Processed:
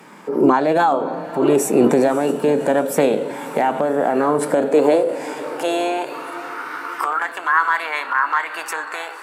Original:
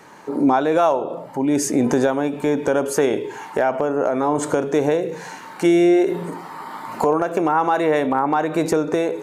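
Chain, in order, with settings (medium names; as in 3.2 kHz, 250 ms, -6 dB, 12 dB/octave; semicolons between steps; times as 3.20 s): high-pass sweep 190 Hz -> 1.2 kHz, 4.44–6.39 s; echo that smears into a reverb 574 ms, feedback 55%, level -15 dB; formant shift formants +3 st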